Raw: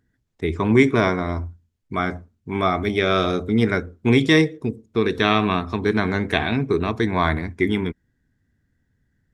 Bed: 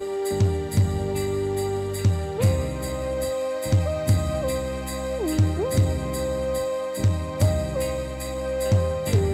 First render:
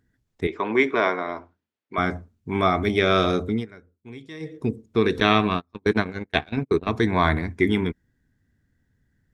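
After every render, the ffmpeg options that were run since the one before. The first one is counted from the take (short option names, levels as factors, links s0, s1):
-filter_complex "[0:a]asettb=1/sr,asplit=3[s0][s1][s2];[s0]atrim=end=0.474[s3];[s1]atrim=start=0.47:end=1.98,asetpts=PTS-STARTPTS,afade=t=in:d=0.004:c=qsin,afade=t=out:st=1.506:d=0.004:c=qsin,highpass=430,lowpass=3600[s4];[s2]atrim=start=1.976[s5];[s3][s4]acrossfade=d=0.004:c1=hsin:c2=qsin[s6];[s6][s5]acrossfade=d=0.004:c1=qsin:c2=hsin,asettb=1/sr,asplit=3[s7][s8][s9];[s7]atrim=end=5.204[s10];[s8]atrim=start=5.2:end=6.87,asetpts=PTS-STARTPTS,afade=t=in:d=0.004:c=qsin,afade=t=out:st=1.666:d=0.004:c=qsin,agate=range=0.0112:threshold=0.0891:ratio=16:release=100:detection=peak[s11];[s9]atrim=start=6.866[s12];[s10][s11]acrossfade=d=0.004:c1=hsin:c2=qsin[s13];[s13][s12]acrossfade=d=0.004:c1=qsin:c2=hsin,asplit=3[s14][s15][s16];[s14]atrim=end=3.66,asetpts=PTS-STARTPTS,afade=t=out:st=3.45:d=0.21:silence=0.0630957[s17];[s15]atrim=start=3.66:end=4.4,asetpts=PTS-STARTPTS,volume=0.0631[s18];[s16]atrim=start=4.4,asetpts=PTS-STARTPTS,afade=t=in:d=0.21:silence=0.0630957[s19];[s17][s18][s19]concat=n=3:v=0:a=1"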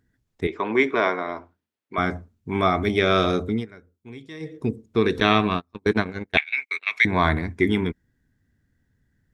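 -filter_complex "[0:a]asettb=1/sr,asplit=3[s0][s1][s2];[s0]atrim=end=6.374[s3];[s1]atrim=start=6.37:end=7.05,asetpts=PTS-STARTPTS,afade=t=in:d=0.004:c=qsin,afade=t=out:st=0.676:d=0.004:c=qsin,highpass=f=2200:t=q:w=11[s4];[s2]atrim=start=7.046[s5];[s3][s4]acrossfade=d=0.004:c1=hsin:c2=qsin[s6];[s6][s5]acrossfade=d=0.004:c1=qsin:c2=hsin"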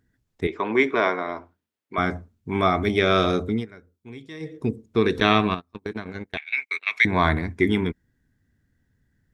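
-filter_complex "[0:a]asettb=1/sr,asplit=3[s0][s1][s2];[s0]atrim=end=5.544[s3];[s1]atrim=start=5.54:end=6.49,asetpts=PTS-STARTPTS,afade=t=in:d=0.004:c=qsin,afade=t=out:st=0.946:d=0.004:c=qsin,acompressor=threshold=0.0447:ratio=5:attack=3.2:release=140:knee=1:detection=peak[s4];[s2]atrim=start=6.486[s5];[s3][s4]acrossfade=d=0.004:c1=hsin:c2=qsin[s6];[s6][s5]acrossfade=d=0.004:c1=qsin:c2=hsin"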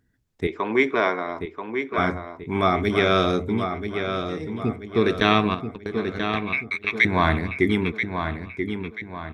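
-filter_complex "[0:a]asplit=2[s0][s1];[s1]adelay=984,lowpass=f=4800:p=1,volume=0.447,asplit=2[s2][s3];[s3]adelay=984,lowpass=f=4800:p=1,volume=0.43,asplit=2[s4][s5];[s5]adelay=984,lowpass=f=4800:p=1,volume=0.43,asplit=2[s6][s7];[s7]adelay=984,lowpass=f=4800:p=1,volume=0.43,asplit=2[s8][s9];[s9]adelay=984,lowpass=f=4800:p=1,volume=0.43[s10];[s0][s2][s4][s6][s8][s10]amix=inputs=6:normalize=0"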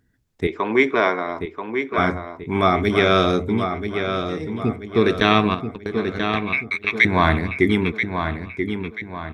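-af "volume=1.41,alimiter=limit=0.891:level=0:latency=1"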